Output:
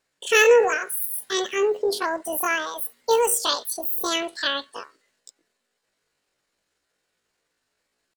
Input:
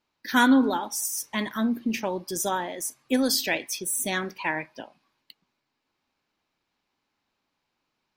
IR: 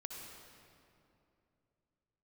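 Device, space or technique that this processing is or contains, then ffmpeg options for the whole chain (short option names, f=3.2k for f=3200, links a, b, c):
chipmunk voice: -af "asetrate=78577,aresample=44100,atempo=0.561231,volume=3.5dB"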